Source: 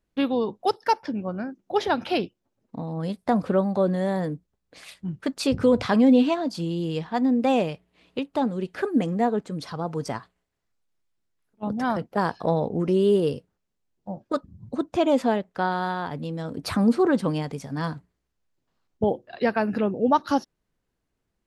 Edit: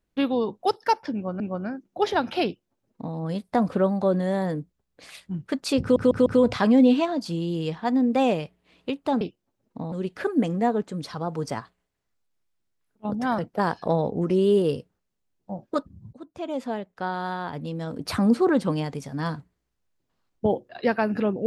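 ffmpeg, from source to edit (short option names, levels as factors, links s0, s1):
-filter_complex "[0:a]asplit=8[s0][s1][s2][s3][s4][s5][s6][s7];[s0]atrim=end=1.402[s8];[s1]atrim=start=1.138:end=5.702[s9];[s2]atrim=start=5.548:end=5.702[s10];[s3]atrim=start=5.548:end=5.702[s11];[s4]atrim=start=5.548:end=8.502[s12];[s5]atrim=start=2.188:end=2.902[s13];[s6]atrim=start=8.498:end=14.71,asetpts=PTS-STARTPTS,afade=t=out:st=6.208:d=0.004:c=hsin:silence=0.11885[s14];[s7]atrim=start=14.71,asetpts=PTS-STARTPTS,afade=t=in:d=1.68:silence=0.11885[s15];[s8][s9]acrossfade=d=0.004:c1=hsin:c2=hsin[s16];[s16][s10]acrossfade=d=0.004:c1=hsin:c2=hsin[s17];[s17][s11]acrossfade=d=0.004:c1=hsin:c2=hsin[s18];[s18][s12]acrossfade=d=0.004:c1=hsin:c2=hsin[s19];[s19][s13]acrossfade=d=0.004:c1=hsin:c2=hsin[s20];[s14][s15]concat=n=2:v=0:a=1[s21];[s20][s21]acrossfade=d=0.004:c1=hsin:c2=hsin"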